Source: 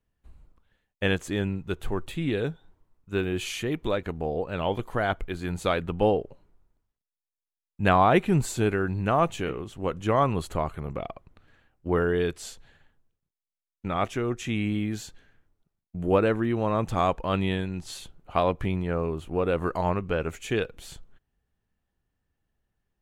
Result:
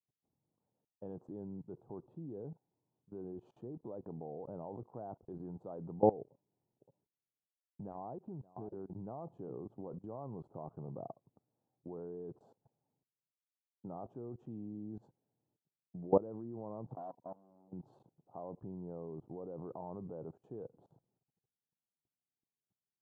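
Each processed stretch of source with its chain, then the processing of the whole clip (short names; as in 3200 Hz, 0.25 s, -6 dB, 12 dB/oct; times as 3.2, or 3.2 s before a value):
6.23–8.96 echo 0.57 s -12.5 dB + compressor 10:1, threshold -35 dBFS
16.93–17.73 rippled Chebyshev low-pass 1000 Hz, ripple 9 dB + low shelf 230 Hz -9.5 dB + core saturation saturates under 2500 Hz
whole clip: elliptic band-pass 120–870 Hz, stop band 40 dB; level quantiser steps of 21 dB; gain -2.5 dB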